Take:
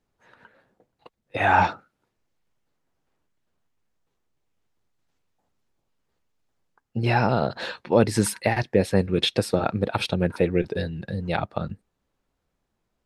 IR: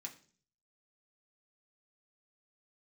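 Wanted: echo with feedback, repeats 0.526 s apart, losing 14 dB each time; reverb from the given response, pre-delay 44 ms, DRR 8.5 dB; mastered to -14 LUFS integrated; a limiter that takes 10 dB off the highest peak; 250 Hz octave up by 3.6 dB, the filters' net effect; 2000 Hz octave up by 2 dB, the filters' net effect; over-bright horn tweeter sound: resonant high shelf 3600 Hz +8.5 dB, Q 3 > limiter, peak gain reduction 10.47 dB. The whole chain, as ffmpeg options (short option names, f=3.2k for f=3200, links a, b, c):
-filter_complex "[0:a]equalizer=f=250:t=o:g=5,equalizer=f=2k:t=o:g=6,alimiter=limit=-11.5dB:level=0:latency=1,aecho=1:1:526|1052:0.2|0.0399,asplit=2[a][b];[1:a]atrim=start_sample=2205,adelay=44[c];[b][c]afir=irnorm=-1:irlink=0,volume=-4.5dB[d];[a][d]amix=inputs=2:normalize=0,highshelf=f=3.6k:t=q:w=3:g=8.5,volume=11.5dB,alimiter=limit=-2dB:level=0:latency=1"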